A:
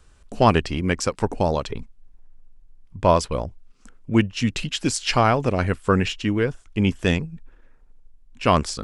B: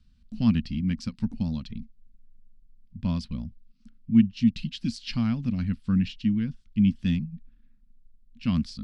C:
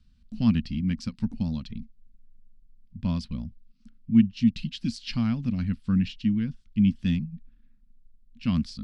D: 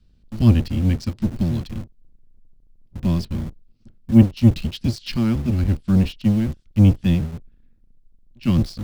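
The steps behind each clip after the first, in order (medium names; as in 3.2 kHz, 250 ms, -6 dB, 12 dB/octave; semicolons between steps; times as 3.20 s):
FFT filter 130 Hz 0 dB, 230 Hz +10 dB, 390 Hz -24 dB, 850 Hz -21 dB, 4.5 kHz -1 dB, 7.1 kHz -18 dB; trim -6 dB
no audible change
octave divider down 1 oct, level +1 dB; in parallel at -8.5 dB: bit crusher 6-bit; on the sum: trim +1.5 dB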